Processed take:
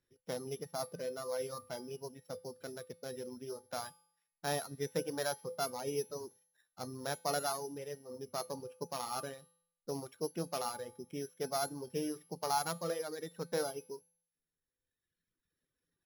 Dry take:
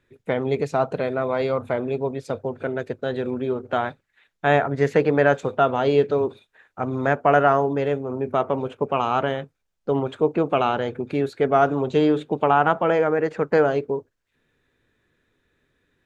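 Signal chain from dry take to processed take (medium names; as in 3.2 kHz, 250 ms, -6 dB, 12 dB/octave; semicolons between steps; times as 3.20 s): sorted samples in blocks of 8 samples; feedback comb 170 Hz, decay 0.66 s, harmonics odd, mix 80%; reverb removal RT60 1.7 s; trim -4 dB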